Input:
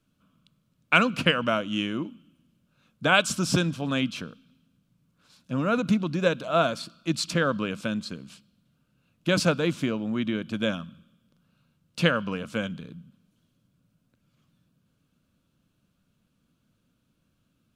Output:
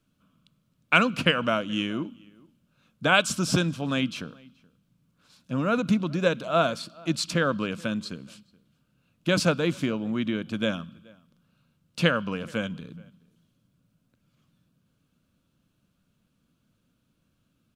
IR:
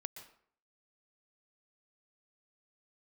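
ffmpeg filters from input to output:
-filter_complex "[0:a]asplit=2[s0][s1];[s1]adelay=425.7,volume=0.0562,highshelf=f=4000:g=-9.58[s2];[s0][s2]amix=inputs=2:normalize=0"

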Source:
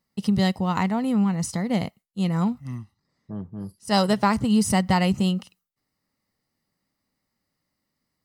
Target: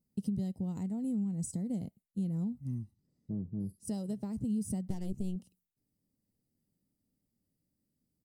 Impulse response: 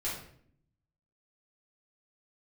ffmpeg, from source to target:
-filter_complex "[0:a]asettb=1/sr,asplit=3[s0][s1][s2];[s0]atrim=end=0.684[s3];[s1]atrim=start=0.68:end=1.8,asetpts=PTS-STARTPTS,afade=t=in:d=0.004:c=qsin,afade=t=out:st=1.116:d=0.004:c=qsin,equalizer=f=7900:t=o:w=0.36:g=10.5[s4];[s2]atrim=start=1.796[s5];[s3][s4]acrossfade=d=0.004:c1=hsin:c2=qsin[s6];[s6][s5]acrossfade=d=0.004:c1=qsin:c2=hsin,asettb=1/sr,asplit=3[s7][s8][s9];[s7]atrim=end=4.894[s10];[s8]atrim=start=4.89:end=5.36,asetpts=PTS-STARTPTS,afade=t=in:d=0.004:c=qsin,afade=t=out:st=0.466:d=0.004:c=qsin,aeval=exprs='0.398*(cos(1*acos(clip(val(0)/0.398,-1,1)))-cos(1*PI/2))+0.158*(cos(4*acos(clip(val(0)/0.398,-1,1)))-cos(4*PI/2))':c=same[s11];[s9]atrim=start=5.356[s12];[s10][s11]acrossfade=d=0.004:c1=hsin:c2=qsin[s13];[s13][s12]acrossfade=d=0.004:c1=qsin:c2=hsin,acompressor=threshold=0.0224:ratio=4,firequalizer=gain_entry='entry(260,0);entry(1100,-25);entry(8700,-4)':delay=0.05:min_phase=1"

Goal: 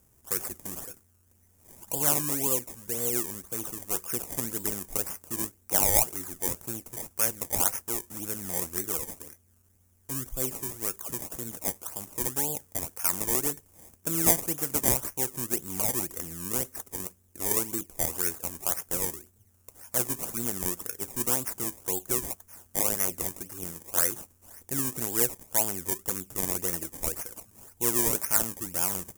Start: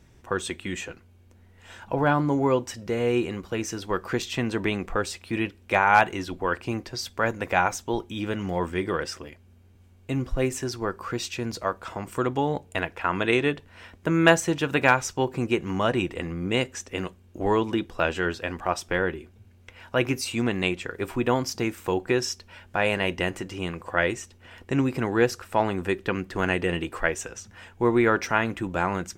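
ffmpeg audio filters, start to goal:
-af "acrusher=samples=22:mix=1:aa=0.000001:lfo=1:lforange=22:lforate=1.9,aexciter=amount=9.8:drive=5.5:freq=6000,volume=0.282"

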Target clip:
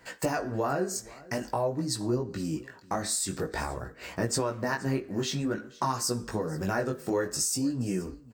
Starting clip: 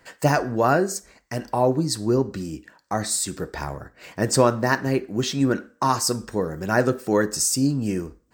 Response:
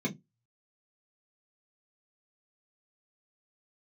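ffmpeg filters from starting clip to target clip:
-filter_complex "[0:a]acompressor=threshold=0.0398:ratio=4,flanger=delay=16:depth=5.9:speed=0.5,asplit=2[s0][s1];[s1]aecho=0:1:475:0.0891[s2];[s0][s2]amix=inputs=2:normalize=0,volume=1.58"

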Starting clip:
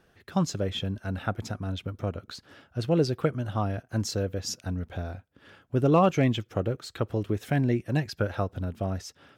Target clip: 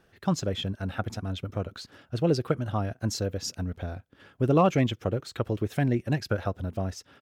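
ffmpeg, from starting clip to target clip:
-af "atempo=1.3"

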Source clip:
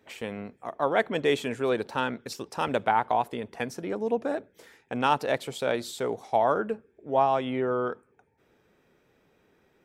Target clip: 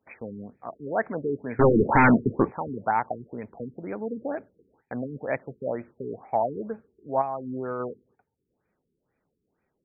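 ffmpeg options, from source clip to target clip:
-filter_complex "[0:a]agate=range=0.316:threshold=0.00126:ratio=16:detection=peak,equalizer=f=410:t=o:w=0.7:g=-4,asettb=1/sr,asplit=3[s0][s1][s2];[s0]atrim=end=1.594[s3];[s1]atrim=start=1.59:end=2.52,asetpts=PTS-STARTPTS,afade=t=in:d=0.004:c=qsin,afade=t=out:st=0.926:d=0.004:c=qsin,aeval=exprs='0.251*sin(PI/2*7.08*val(0)/0.251)':c=same[s4];[s2]atrim=start=2.516[s5];[s3][s4]acrossfade=d=0.004:c1=hsin:c2=qsin[s6];[s6][s5]acrossfade=d=0.004:c1=qsin:c2=hsin,asettb=1/sr,asplit=3[s7][s8][s9];[s7]atrim=end=7.214[s10];[s8]atrim=start=7.21:end=7.8,asetpts=PTS-STARTPTS,afade=t=in:d=0.004:c=qsin,afade=t=out:st=0.586:d=0.004:c=qsin,acompressor=threshold=0.0447:ratio=6[s11];[s9]atrim=start=7.796[s12];[s10][s11]acrossfade=d=0.004:c1=hsin:c2=qsin[s13];[s13][s12]acrossfade=d=0.004:c1=qsin:c2=hsin,afftfilt=real='re*lt(b*sr/1024,440*pow(2600/440,0.5+0.5*sin(2*PI*2.1*pts/sr)))':imag='im*lt(b*sr/1024,440*pow(2600/440,0.5+0.5*sin(2*PI*2.1*pts/sr)))':win_size=1024:overlap=0.75"

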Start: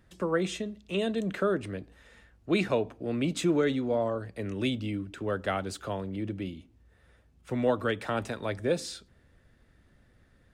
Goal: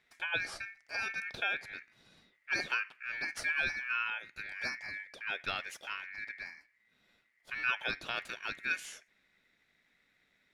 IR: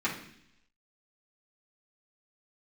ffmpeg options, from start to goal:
-af "bass=f=250:g=-8,treble=f=4000:g=-2,aeval=exprs='val(0)*sin(2*PI*2000*n/s)':c=same,volume=0.708"

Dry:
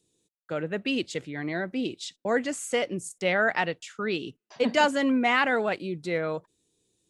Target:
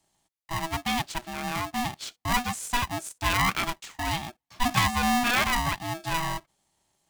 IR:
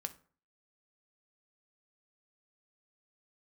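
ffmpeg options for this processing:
-af "asuperstop=centerf=870:order=12:qfactor=2.5,aeval=exprs='val(0)*sgn(sin(2*PI*490*n/s))':c=same"

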